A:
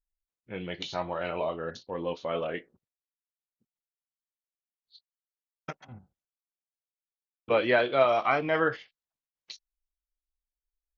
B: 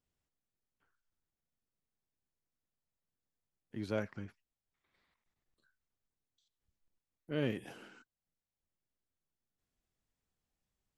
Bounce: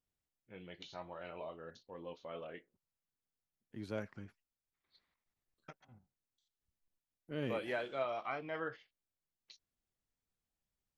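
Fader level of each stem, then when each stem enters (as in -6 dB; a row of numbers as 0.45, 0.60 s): -15.0, -5.0 dB; 0.00, 0.00 s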